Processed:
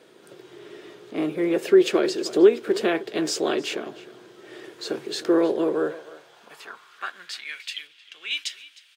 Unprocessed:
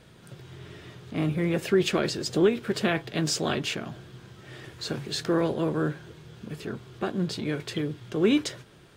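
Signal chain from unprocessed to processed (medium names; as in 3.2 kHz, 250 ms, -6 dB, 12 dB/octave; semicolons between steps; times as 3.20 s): echo from a far wall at 53 m, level -16 dB; high-pass sweep 370 Hz -> 2.7 kHz, 5.64–7.75 s; 7.87–8.31 s: treble shelf 4.8 kHz -9 dB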